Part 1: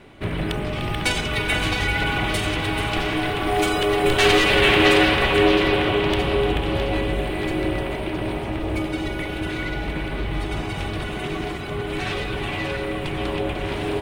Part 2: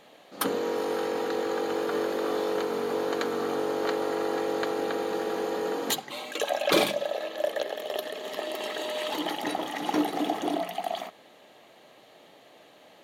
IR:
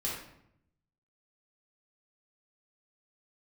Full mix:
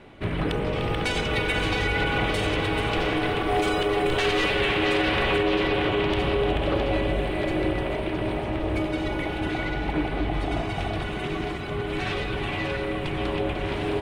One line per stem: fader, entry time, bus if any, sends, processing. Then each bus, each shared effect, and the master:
-1.5 dB, 0.00 s, no send, treble shelf 8.2 kHz -10.5 dB
-3.0 dB, 0.00 s, no send, low-pass 1.2 kHz 12 dB/octave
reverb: none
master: peak limiter -14.5 dBFS, peak gain reduction 8.5 dB

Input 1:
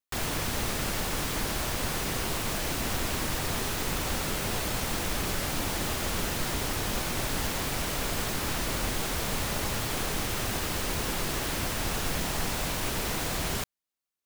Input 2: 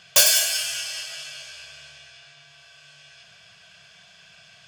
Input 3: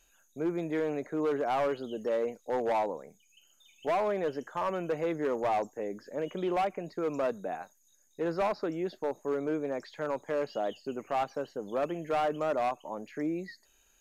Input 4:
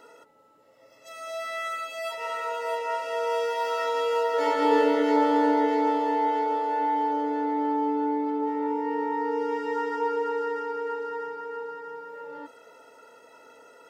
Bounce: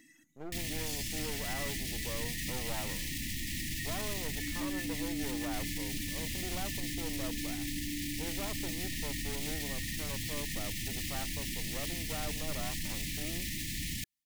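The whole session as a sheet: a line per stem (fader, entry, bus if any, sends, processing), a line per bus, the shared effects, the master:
+1.0 dB, 0.40 s, bus A, no send, none
-15.0 dB, 0.70 s, bus A, no send, none
-9.0 dB, 0.00 s, no bus, no send, half-wave rectifier
+2.0 dB, 0.00 s, bus A, no send, reverb removal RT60 1.8 s; high-order bell 3.6 kHz -9 dB 1.1 oct
bus A: 0.0 dB, brick-wall FIR band-stop 340–1700 Hz; peak limiter -28 dBFS, peak gain reduction 13.5 dB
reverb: none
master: none

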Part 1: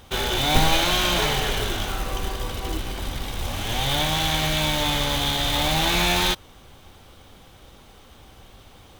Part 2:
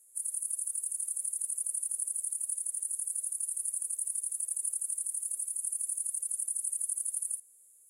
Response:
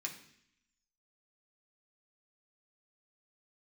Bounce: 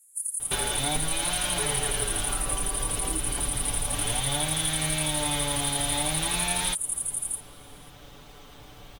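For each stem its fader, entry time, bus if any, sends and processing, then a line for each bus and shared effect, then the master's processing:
-0.5 dB, 0.40 s, no send, compression 10:1, threshold -27 dBFS, peak gain reduction 15.5 dB
+2.0 dB, 0.00 s, no send, high-pass 1 kHz 12 dB/octave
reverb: none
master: comb 6.9 ms

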